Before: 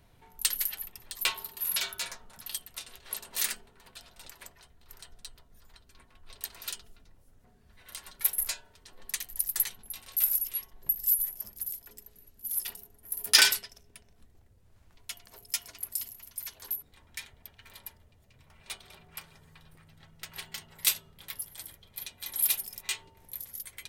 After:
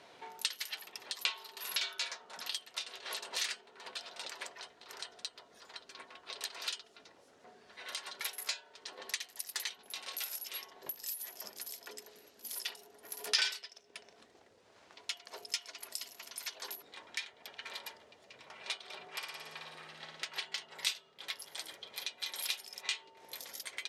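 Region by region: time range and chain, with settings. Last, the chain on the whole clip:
19.08–20.25 low shelf 210 Hz -8 dB + notch 1400 Hz, Q 21 + flutter echo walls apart 9.7 m, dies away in 0.94 s
whole clip: Chebyshev band-pass 440–5400 Hz, order 2; dynamic EQ 3200 Hz, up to +4 dB, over -45 dBFS, Q 0.71; compressor 2.5:1, threshold -52 dBFS; gain +11 dB

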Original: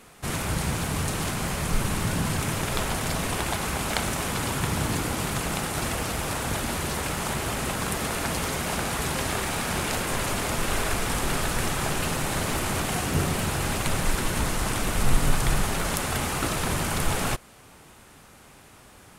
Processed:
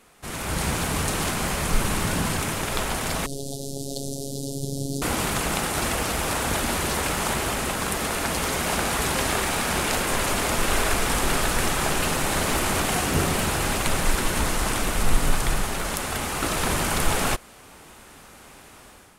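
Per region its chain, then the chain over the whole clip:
3.26–5.02 inverse Chebyshev band-stop 1100–2200 Hz, stop band 60 dB + high shelf 7700 Hz -9 dB + robotiser 138 Hz
whole clip: bell 120 Hz -6 dB 1.2 oct; AGC gain up to 9 dB; gain -4.5 dB

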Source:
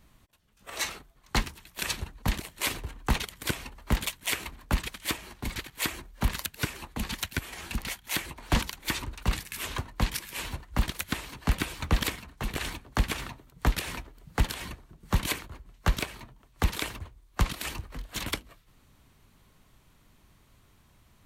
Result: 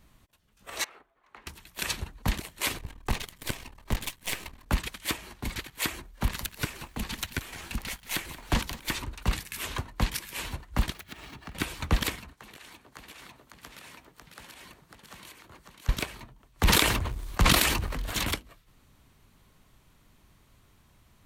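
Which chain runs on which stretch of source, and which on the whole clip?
0.84–1.47 three-band isolator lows -21 dB, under 330 Hz, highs -20 dB, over 2500 Hz + compressor 8:1, threshold -47 dBFS
2.78–4.66 half-wave gain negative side -12 dB + notch 1400 Hz
6.16–8.97 half-wave gain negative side -3 dB + lo-fi delay 0.181 s, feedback 35%, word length 8-bit, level -14.5 dB
10.94–11.55 median filter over 5 samples + compressor 12:1, threshold -37 dBFS + notch comb 510 Hz
12.33–15.89 HPF 320 Hz 6 dB/oct + compressor 16:1, threshold -44 dBFS + echo 0.548 s -4 dB
16.63–18.33 sample leveller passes 1 + sustainer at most 30 dB/s
whole clip: dry

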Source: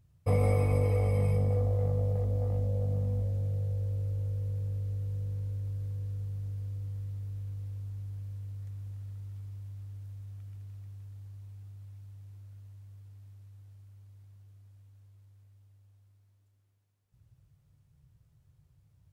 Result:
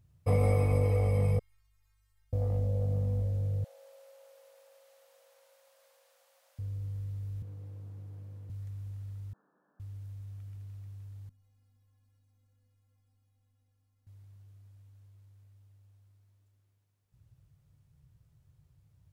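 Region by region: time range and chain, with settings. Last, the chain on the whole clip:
1.39–2.33 inverse Chebyshev band-stop 160–560 Hz, stop band 60 dB + metallic resonator 160 Hz, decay 0.8 s, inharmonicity 0.008
3.64–6.59 brick-wall FIR high-pass 510 Hz + lo-fi delay 0.147 s, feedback 35%, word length 12-bit, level -11 dB
7.42–8.5 HPF 210 Hz + tilt shelf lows +7.5 dB, about 1300 Hz
9.33–9.8 brick-wall FIR band-pass 170–1800 Hz + tilt +3 dB/oct
11.29–14.07 low shelf 280 Hz +7 dB + metallic resonator 250 Hz, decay 0.29 s, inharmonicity 0.008 + lo-fi delay 0.125 s, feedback 35%, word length 14-bit, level -8 dB
whole clip: dry

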